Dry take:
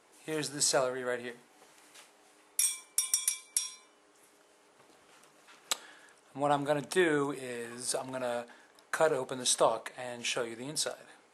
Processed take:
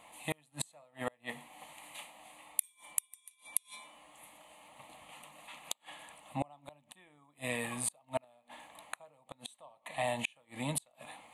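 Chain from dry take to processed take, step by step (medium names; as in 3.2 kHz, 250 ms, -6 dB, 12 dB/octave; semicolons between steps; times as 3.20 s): static phaser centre 1.5 kHz, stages 6; inverted gate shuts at -30 dBFS, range -36 dB; trim +10 dB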